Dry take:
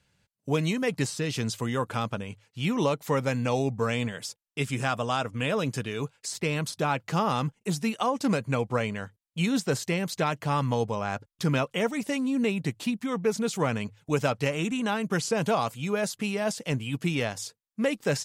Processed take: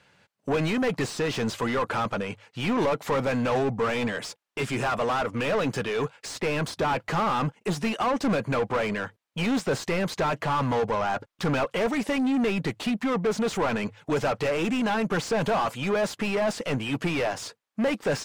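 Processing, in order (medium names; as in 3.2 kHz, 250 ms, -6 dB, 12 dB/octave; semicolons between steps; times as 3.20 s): overdrive pedal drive 28 dB, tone 1.3 kHz, clips at -12 dBFS; trim -4 dB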